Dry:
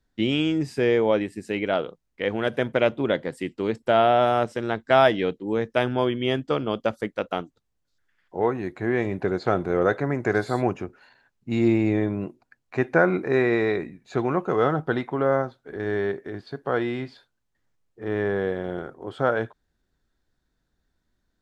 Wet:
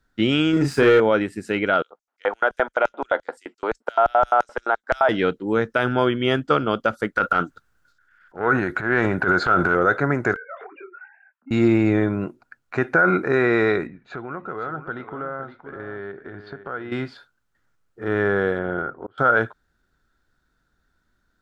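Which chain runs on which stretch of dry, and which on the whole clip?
0.53–1.00 s: doubling 36 ms -5 dB + waveshaping leveller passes 1
1.82–5.09 s: high-pass 220 Hz 24 dB/octave + LFO high-pass square 5.8 Hz 800–6400 Hz + tilt EQ -4.5 dB/octave
7.15–9.75 s: peaking EQ 1.5 kHz +10 dB 0.38 oct + transient shaper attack -12 dB, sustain +7 dB
10.34–11.51 s: formants replaced by sine waves + compression 20:1, threshold -36 dBFS + detune thickener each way 43 cents
13.87–16.92 s: low-pass 3.1 kHz + compression 2.5:1, threshold -40 dBFS + delay 516 ms -11 dB
18.59–19.18 s: low-pass 2.4 kHz + slow attack 622 ms
whole clip: peaking EQ 1.4 kHz +13.5 dB 0.36 oct; peak limiter -11 dBFS; trim +3.5 dB

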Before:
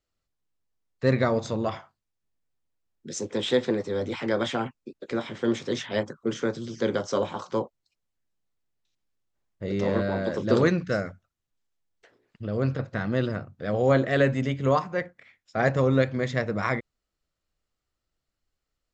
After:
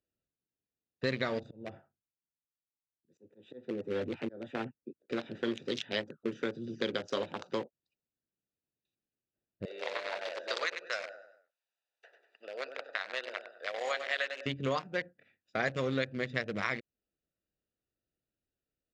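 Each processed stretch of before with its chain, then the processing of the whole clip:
1.43–5.10 s: slow attack 434 ms + peaking EQ 5.3 kHz -13.5 dB 1.6 oct + three bands expanded up and down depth 40%
9.65–14.46 s: high-pass 660 Hz 24 dB/octave + feedback delay 97 ms, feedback 38%, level -7 dB + three bands compressed up and down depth 40%
whole clip: local Wiener filter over 41 samples; frequency weighting D; compression 2.5:1, threshold -33 dBFS

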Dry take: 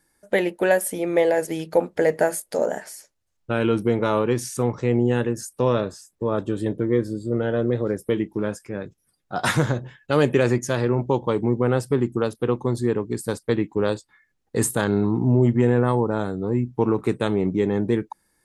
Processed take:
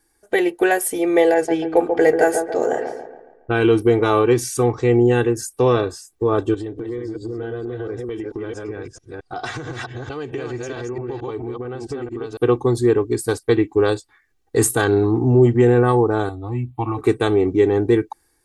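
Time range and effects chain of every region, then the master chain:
1.34–3.62 s: level-controlled noise filter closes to 1.4 kHz, open at -15.5 dBFS + feedback echo behind a low-pass 139 ms, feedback 44%, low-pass 1.3 kHz, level -5.5 dB
6.54–12.37 s: chunks repeated in reverse 222 ms, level -4.5 dB + low-pass 7 kHz 24 dB/octave + compression 8:1, threshold -30 dBFS
16.29–16.97 s: high-pass 53 Hz + peaking EQ 200 Hz -11.5 dB 0.34 oct + static phaser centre 1.6 kHz, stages 6
whole clip: comb 2.6 ms, depth 78%; level rider gain up to 4 dB

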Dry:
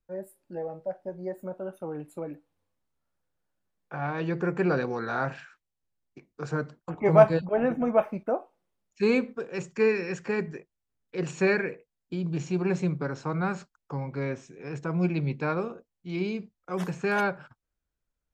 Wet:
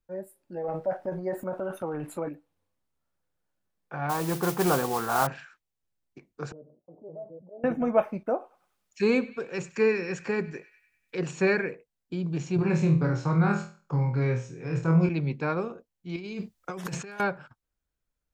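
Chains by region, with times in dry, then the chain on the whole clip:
0.64–2.29 s: peaking EQ 1.3 kHz +7 dB 1.8 oct + transient shaper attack +2 dB, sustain +10 dB
4.09–5.27 s: low-pass 1.8 kHz + high-order bell 940 Hz +8.5 dB 1 oct + modulation noise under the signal 11 dB
6.52–7.64 s: elliptic low-pass 600 Hz, stop band 70 dB + differentiator + level flattener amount 50%
8.31–11.19 s: band-passed feedback delay 98 ms, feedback 54%, band-pass 2.5 kHz, level -17.5 dB + tape noise reduction on one side only encoder only
12.56–15.09 s: peaking EQ 130 Hz +13.5 dB 0.47 oct + flutter echo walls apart 4.2 m, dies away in 0.37 s
16.16–17.20 s: treble shelf 2.5 kHz +7 dB + compressor with a negative ratio -37 dBFS
whole clip: none

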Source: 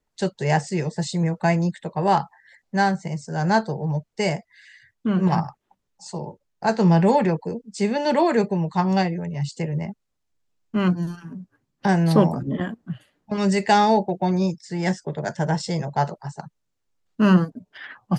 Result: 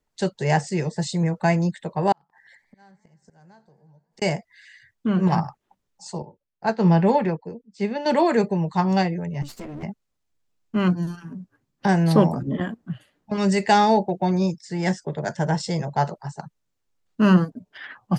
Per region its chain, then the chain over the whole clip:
2.12–4.22 s: inverted gate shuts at -24 dBFS, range -30 dB + compression 12:1, threshold -47 dBFS + modulated delay 87 ms, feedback 78%, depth 125 cents, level -20 dB
6.22–8.06 s: low-pass 4.5 kHz + upward expansion, over -34 dBFS
9.42–9.83 s: comb filter that takes the minimum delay 9.3 ms + compression 2.5:1, threshold -34 dBFS
whole clip: none

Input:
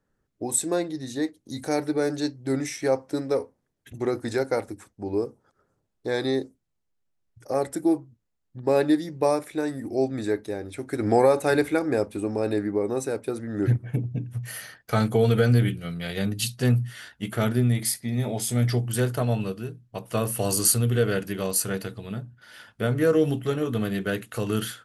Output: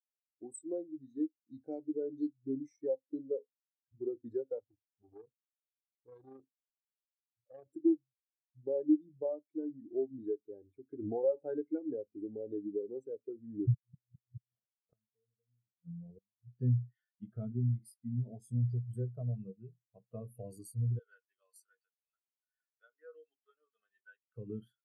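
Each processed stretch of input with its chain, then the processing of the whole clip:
4.59–7.68 s: peaking EQ 120 Hz +6 dB 0.84 oct + AM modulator 26 Hz, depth 50% + transformer saturation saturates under 2.2 kHz
13.74–16.51 s: median filter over 25 samples + inverted gate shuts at -22 dBFS, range -28 dB
20.99–24.36 s: high-pass 1.2 kHz + treble shelf 10 kHz -8 dB
whole clip: dynamic bell 1.9 kHz, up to -3 dB, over -44 dBFS, Q 1.6; compression 3:1, threshold -25 dBFS; spectral contrast expander 2.5:1; trim -7 dB

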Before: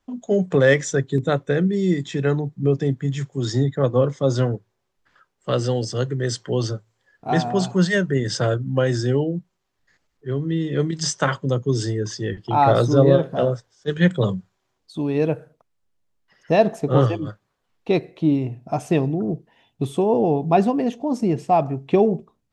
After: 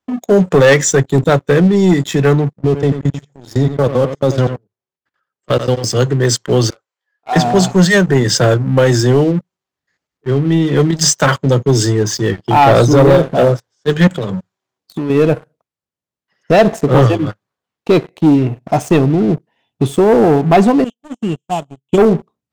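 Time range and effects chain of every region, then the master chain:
2.53–5.84 s: level held to a coarse grid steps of 21 dB + delay 90 ms -11 dB
6.70–7.36 s: high-pass 760 Hz + treble shelf 6.2 kHz -9.5 dB + detune thickener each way 22 cents
14.07–15.10 s: high-pass 92 Hz + compression 10:1, threshold -26 dBFS
20.84–21.98 s: CVSD coder 64 kbps + FFT filter 160 Hz 0 dB, 240 Hz -3 dB, 660 Hz -8 dB, 1 kHz -5 dB, 1.9 kHz -21 dB, 3.1 kHz +14 dB, 4.6 kHz -18 dB, 7.2 kHz +6 dB, 11 kHz -18 dB + upward expansion 2.5:1, over -41 dBFS
whole clip: high-pass 88 Hz 12 dB/octave; dynamic bell 7.2 kHz, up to +5 dB, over -50 dBFS, Q 2.4; waveshaping leveller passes 3

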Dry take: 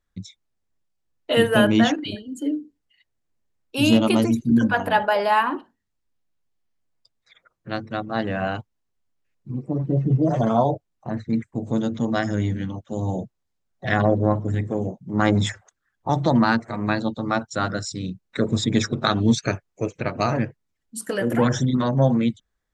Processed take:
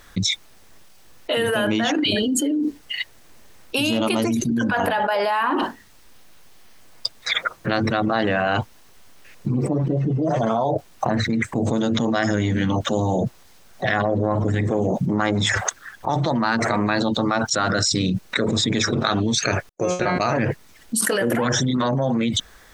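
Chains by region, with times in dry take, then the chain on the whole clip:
19.69–20.20 s: gate -48 dBFS, range -38 dB + peaking EQ 2.4 kHz -8.5 dB 0.41 oct + feedback comb 180 Hz, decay 0.33 s, mix 90%
whole clip: bass shelf 320 Hz -9.5 dB; band-stop 7.2 kHz, Q 15; level flattener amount 100%; trim -5 dB

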